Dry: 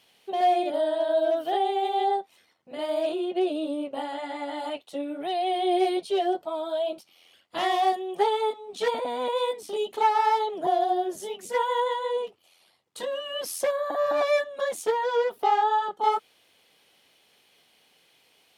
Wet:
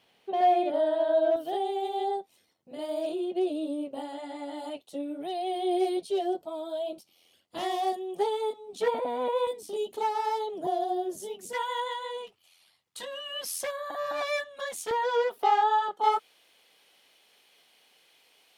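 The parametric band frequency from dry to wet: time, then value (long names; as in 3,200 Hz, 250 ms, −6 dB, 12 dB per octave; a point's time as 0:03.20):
parametric band −10.5 dB 2.6 octaves
13,000 Hz
from 0:01.36 1,600 Hz
from 0:08.81 5,700 Hz
from 0:09.47 1,600 Hz
from 0:11.53 400 Hz
from 0:14.91 100 Hz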